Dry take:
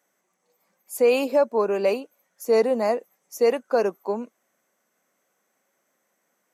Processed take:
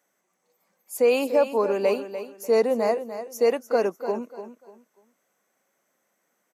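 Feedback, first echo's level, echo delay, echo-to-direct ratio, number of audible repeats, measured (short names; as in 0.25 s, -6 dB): 27%, -11.0 dB, 0.295 s, -10.5 dB, 3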